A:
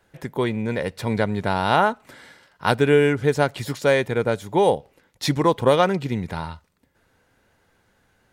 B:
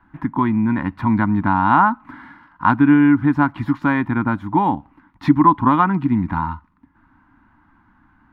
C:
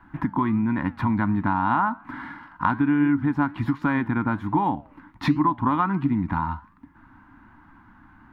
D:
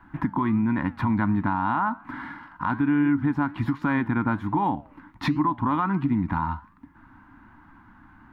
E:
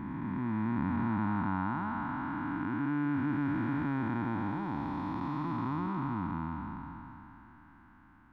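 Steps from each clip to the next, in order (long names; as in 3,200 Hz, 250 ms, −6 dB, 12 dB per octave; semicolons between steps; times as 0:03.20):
drawn EQ curve 140 Hz 0 dB, 300 Hz +14 dB, 460 Hz −23 dB, 990 Hz +14 dB, 7,500 Hz −27 dB, 13,000 Hz −22 dB; in parallel at −0.5 dB: downward compressor, threshold −21 dBFS, peak gain reduction 15.5 dB; on the sum: low-shelf EQ 110 Hz +10 dB; level −4.5 dB
downward compressor 2.5 to 1, threshold −28 dBFS, peak gain reduction 14 dB; flanger 1.3 Hz, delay 6 ms, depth 5.1 ms, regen +88%; level +8.5 dB
brickwall limiter −14.5 dBFS, peak gain reduction 7 dB
spectrum smeared in time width 1,110 ms; level −4 dB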